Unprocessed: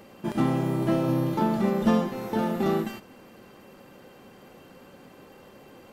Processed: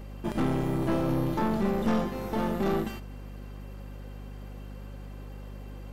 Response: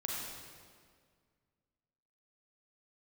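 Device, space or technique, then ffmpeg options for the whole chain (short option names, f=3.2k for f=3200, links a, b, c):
valve amplifier with mains hum: -af "aeval=exprs='(tanh(12.6*val(0)+0.55)-tanh(0.55))/12.6':c=same,aeval=exprs='val(0)+0.00891*(sin(2*PI*50*n/s)+sin(2*PI*2*50*n/s)/2+sin(2*PI*3*50*n/s)/3+sin(2*PI*4*50*n/s)/4+sin(2*PI*5*50*n/s)/5)':c=same,volume=1dB"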